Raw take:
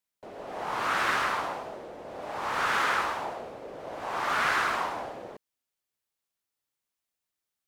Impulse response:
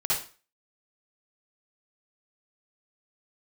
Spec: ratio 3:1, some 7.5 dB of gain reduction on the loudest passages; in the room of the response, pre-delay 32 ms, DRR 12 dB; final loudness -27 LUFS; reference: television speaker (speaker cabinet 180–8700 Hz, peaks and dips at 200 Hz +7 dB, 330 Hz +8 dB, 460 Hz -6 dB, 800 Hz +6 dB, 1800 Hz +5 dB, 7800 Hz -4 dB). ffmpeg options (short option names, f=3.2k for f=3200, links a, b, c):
-filter_complex "[0:a]acompressor=threshold=-33dB:ratio=3,asplit=2[a][b];[1:a]atrim=start_sample=2205,adelay=32[c];[b][c]afir=irnorm=-1:irlink=0,volume=-21.5dB[d];[a][d]amix=inputs=2:normalize=0,highpass=f=180:w=0.5412,highpass=f=180:w=1.3066,equalizer=f=200:t=q:w=4:g=7,equalizer=f=330:t=q:w=4:g=8,equalizer=f=460:t=q:w=4:g=-6,equalizer=f=800:t=q:w=4:g=6,equalizer=f=1.8k:t=q:w=4:g=5,equalizer=f=7.8k:t=q:w=4:g=-4,lowpass=f=8.7k:w=0.5412,lowpass=f=8.7k:w=1.3066,volume=6dB"